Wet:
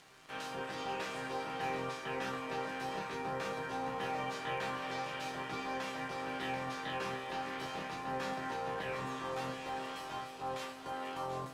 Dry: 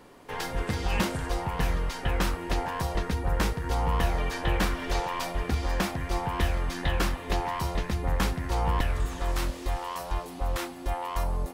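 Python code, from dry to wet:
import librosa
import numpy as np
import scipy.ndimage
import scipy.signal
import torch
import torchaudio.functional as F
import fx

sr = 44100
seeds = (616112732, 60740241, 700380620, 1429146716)

p1 = fx.spec_clip(x, sr, under_db=19)
p2 = fx.highpass(p1, sr, hz=180.0, slope=6)
p3 = fx.peak_eq(p2, sr, hz=6300.0, db=-4.5, octaves=2.1)
p4 = fx.notch(p3, sr, hz=2100.0, q=23.0)
p5 = fx.over_compress(p4, sr, threshold_db=-35.0, ratio=-1.0)
p6 = p4 + (p5 * 10.0 ** (-2.0 / 20.0))
p7 = fx.quant_dither(p6, sr, seeds[0], bits=8, dither='triangular')
p8 = fx.resonator_bank(p7, sr, root=48, chord='minor', decay_s=0.36)
p9 = fx.dmg_crackle(p8, sr, seeds[1], per_s=370.0, level_db=-46.0)
p10 = fx.air_absorb(p9, sr, metres=57.0)
p11 = p10 + 10.0 ** (-9.0 / 20.0) * np.pad(p10, (int(734 * sr / 1000.0), 0))[:len(p10)]
y = p11 * 10.0 ** (1.0 / 20.0)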